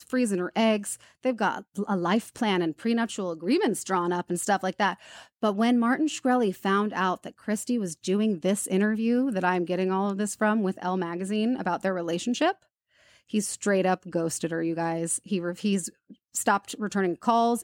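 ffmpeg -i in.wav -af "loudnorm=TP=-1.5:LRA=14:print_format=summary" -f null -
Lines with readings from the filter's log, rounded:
Input Integrated:    -26.8 LUFS
Input True Peak:      -9.1 dBTP
Input LRA:             2.1 LU
Input Threshold:     -37.1 LUFS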